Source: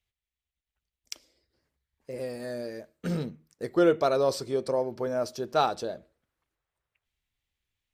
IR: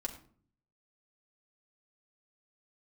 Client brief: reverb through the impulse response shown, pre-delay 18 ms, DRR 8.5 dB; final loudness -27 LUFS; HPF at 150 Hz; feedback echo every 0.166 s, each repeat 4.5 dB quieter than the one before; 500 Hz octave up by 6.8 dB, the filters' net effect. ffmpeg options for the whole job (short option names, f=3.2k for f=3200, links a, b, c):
-filter_complex "[0:a]highpass=150,equalizer=f=500:t=o:g=8,aecho=1:1:166|332|498|664|830|996|1162|1328|1494:0.596|0.357|0.214|0.129|0.0772|0.0463|0.0278|0.0167|0.01,asplit=2[a][b];[1:a]atrim=start_sample=2205,adelay=18[c];[b][c]afir=irnorm=-1:irlink=0,volume=-8.5dB[d];[a][d]amix=inputs=2:normalize=0,volume=-6dB"